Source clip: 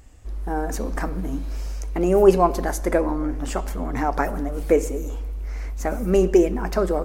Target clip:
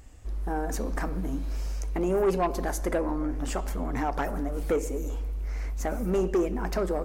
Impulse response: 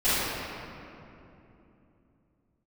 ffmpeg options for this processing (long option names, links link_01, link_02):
-filter_complex "[0:a]asplit=2[link_01][link_02];[link_02]acompressor=threshold=-26dB:ratio=6,volume=1.5dB[link_03];[link_01][link_03]amix=inputs=2:normalize=0,asoftclip=type=tanh:threshold=-10.5dB,volume=-8dB"